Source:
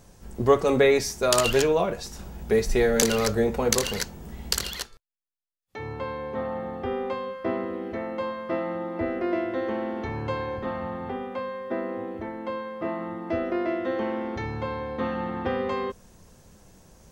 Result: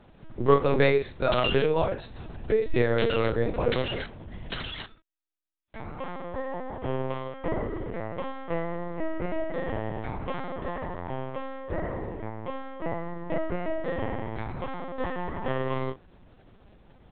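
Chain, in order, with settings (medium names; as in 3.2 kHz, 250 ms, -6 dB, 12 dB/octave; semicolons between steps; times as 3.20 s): doubling 33 ms -6.5 dB; LPC vocoder at 8 kHz pitch kept; trim -2 dB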